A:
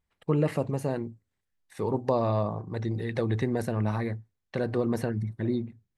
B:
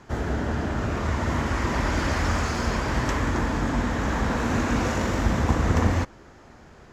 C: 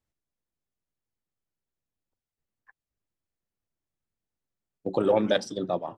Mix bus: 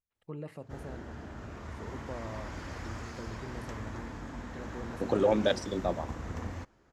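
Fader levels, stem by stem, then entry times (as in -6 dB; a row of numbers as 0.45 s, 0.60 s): -16.5 dB, -17.0 dB, -3.0 dB; 0.00 s, 0.60 s, 0.15 s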